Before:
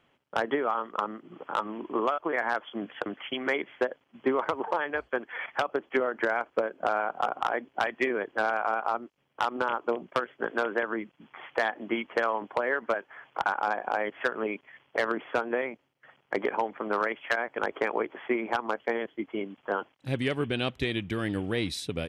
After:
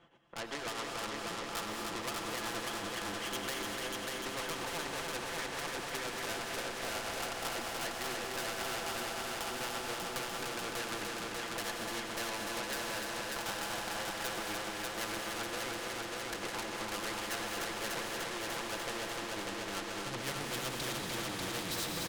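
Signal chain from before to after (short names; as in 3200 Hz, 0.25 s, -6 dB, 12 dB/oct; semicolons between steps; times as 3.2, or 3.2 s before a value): LPF 7700 Hz; bell 2400 Hz -8 dB 0.37 oct; comb 5.9 ms, depth 57%; AGC gain up to 15 dB; tube stage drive 24 dB, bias 0.3; tremolo triangle 7.8 Hz, depth 75%; multi-head echo 0.296 s, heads first and second, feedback 68%, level -6.5 dB; non-linear reverb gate 0.26 s rising, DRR 5 dB; spectral compressor 2:1; gain -5 dB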